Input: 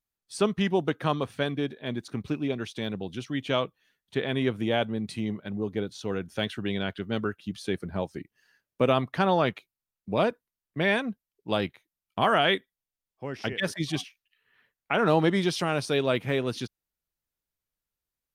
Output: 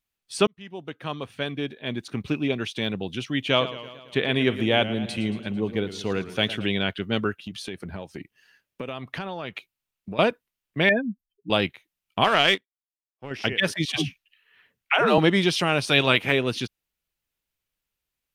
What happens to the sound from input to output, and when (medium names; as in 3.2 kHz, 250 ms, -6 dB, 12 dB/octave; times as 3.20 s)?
0.47–2.35 s: fade in
3.42–6.66 s: modulated delay 112 ms, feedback 61%, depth 112 cents, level -14 dB
7.39–10.19 s: compression, threshold -34 dBFS
10.89–11.50 s: spectral contrast enhancement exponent 3.3
12.24–13.31 s: power-law waveshaper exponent 1.4
13.85–15.18 s: phase dispersion lows, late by 113 ms, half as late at 360 Hz
15.86–16.31 s: spectral peaks clipped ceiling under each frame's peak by 12 dB
whole clip: peaking EQ 2.7 kHz +7 dB 0.87 oct; trim +3.5 dB